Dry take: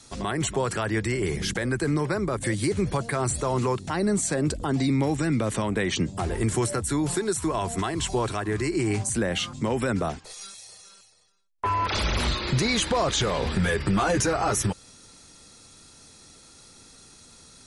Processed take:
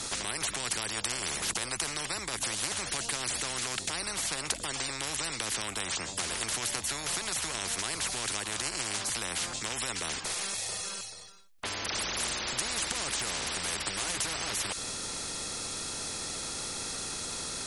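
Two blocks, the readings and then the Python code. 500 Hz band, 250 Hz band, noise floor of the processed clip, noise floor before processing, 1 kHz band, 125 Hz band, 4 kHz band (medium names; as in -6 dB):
-15.0 dB, -18.0 dB, -41 dBFS, -52 dBFS, -9.0 dB, -18.5 dB, +0.5 dB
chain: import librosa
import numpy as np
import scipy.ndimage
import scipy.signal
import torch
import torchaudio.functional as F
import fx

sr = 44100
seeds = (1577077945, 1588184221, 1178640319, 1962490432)

y = fx.spectral_comp(x, sr, ratio=10.0)
y = y * librosa.db_to_amplitude(1.5)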